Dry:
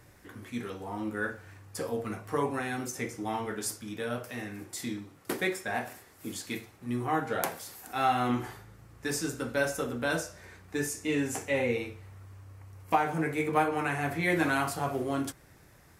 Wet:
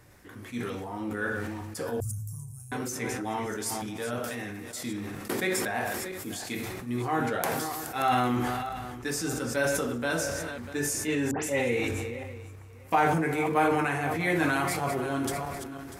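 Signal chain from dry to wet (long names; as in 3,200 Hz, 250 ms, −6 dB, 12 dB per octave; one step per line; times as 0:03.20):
feedback delay that plays each chunk backwards 322 ms, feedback 40%, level −11 dB
0:02.00–0:02.72: inverse Chebyshev band-stop filter 240–3,800 Hz, stop band 40 dB
0:11.31–0:11.88: all-pass dispersion highs, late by 127 ms, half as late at 2,800 Hz
level that may fall only so fast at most 23 dB per second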